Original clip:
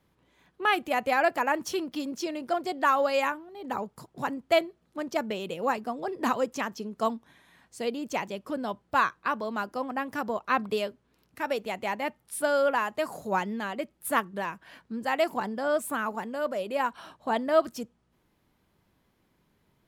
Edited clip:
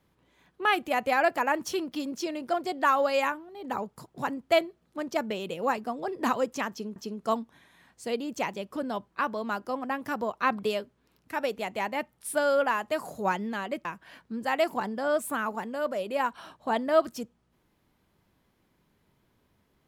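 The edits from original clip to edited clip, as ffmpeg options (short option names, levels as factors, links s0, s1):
-filter_complex "[0:a]asplit=4[s0][s1][s2][s3];[s0]atrim=end=6.962[s4];[s1]atrim=start=6.698:end=8.862[s5];[s2]atrim=start=9.188:end=13.922[s6];[s3]atrim=start=14.448[s7];[s4][s5]acrossfade=d=0.004:c1=hsin:c2=hsin[s8];[s8][s6]acrossfade=d=0.004:c1=hsin:c2=hsin[s9];[s9][s7]acrossfade=d=0.004:c1=hsin:c2=hsin"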